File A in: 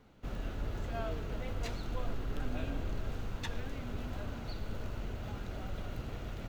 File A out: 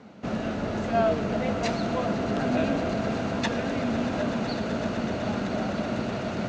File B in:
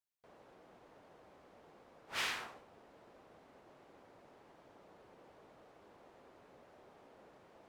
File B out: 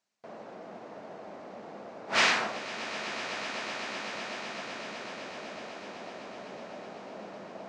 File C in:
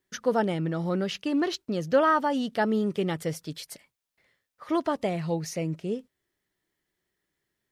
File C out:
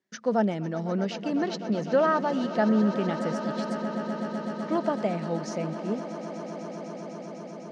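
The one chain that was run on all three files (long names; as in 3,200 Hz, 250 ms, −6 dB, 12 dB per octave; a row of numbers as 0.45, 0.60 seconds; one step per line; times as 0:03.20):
loudspeaker in its box 150–6,900 Hz, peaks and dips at 210 Hz +9 dB, 650 Hz +6 dB, 3,300 Hz −4 dB
echo that builds up and dies away 126 ms, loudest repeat 8, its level −16 dB
normalise the peak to −12 dBFS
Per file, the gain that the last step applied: +12.5, +14.0, −3.0 decibels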